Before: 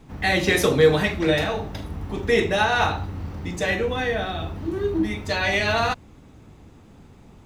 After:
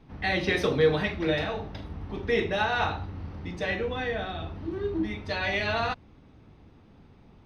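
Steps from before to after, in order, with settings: Savitzky-Golay filter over 15 samples; trim -6 dB

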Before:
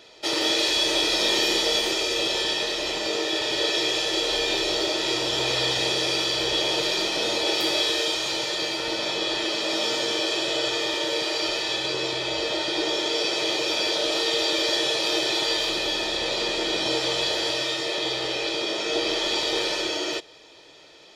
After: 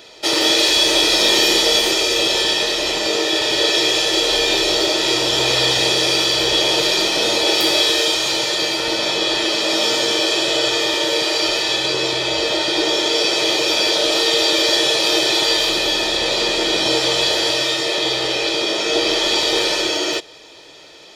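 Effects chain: treble shelf 9.1 kHz +7 dB; trim +7 dB

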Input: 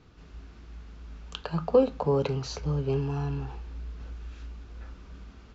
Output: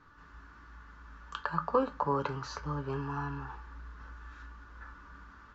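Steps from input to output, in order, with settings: high-order bell 1.3 kHz +15.5 dB 1.2 oct; feedback comb 290 Hz, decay 0.17 s, harmonics all, mix 70%

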